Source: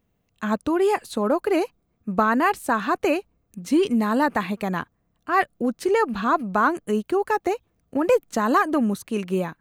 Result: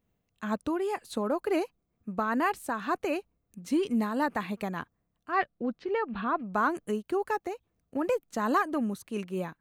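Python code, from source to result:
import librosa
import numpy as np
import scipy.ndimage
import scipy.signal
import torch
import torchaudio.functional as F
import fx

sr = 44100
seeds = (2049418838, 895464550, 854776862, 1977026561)

y = fx.lowpass(x, sr, hz=fx.line((5.31, 5100.0), (6.53, 3000.0)), slope=24, at=(5.31, 6.53), fade=0.02)
y = fx.am_noise(y, sr, seeds[0], hz=5.7, depth_pct=60)
y = y * 10.0 ** (-4.5 / 20.0)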